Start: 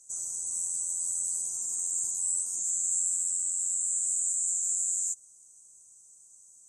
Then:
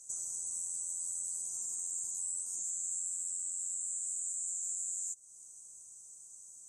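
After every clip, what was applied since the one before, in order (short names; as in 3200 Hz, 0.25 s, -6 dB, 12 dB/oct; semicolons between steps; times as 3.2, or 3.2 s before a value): compressor 2.5:1, threshold -42 dBFS, peak gain reduction 12 dB; gain +2.5 dB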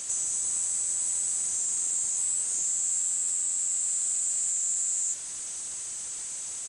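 zero-crossing step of -40 dBFS; downsampling 22050 Hz; gain +7.5 dB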